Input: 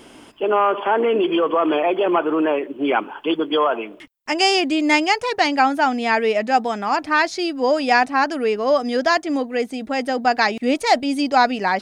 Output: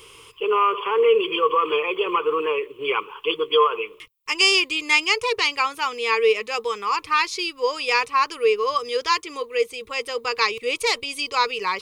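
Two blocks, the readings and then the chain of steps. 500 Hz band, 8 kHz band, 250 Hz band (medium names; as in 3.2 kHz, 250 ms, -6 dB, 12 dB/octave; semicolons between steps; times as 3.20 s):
-2.5 dB, +1.5 dB, -15.5 dB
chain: FFT filter 120 Hz 0 dB, 260 Hz -26 dB, 460 Hz +4 dB, 670 Hz -28 dB, 1.1 kHz +6 dB, 1.6 kHz -12 dB, 2.4 kHz +5 dB, 4.3 kHz +1 dB, 6.4 kHz +1 dB, 13 kHz +6 dB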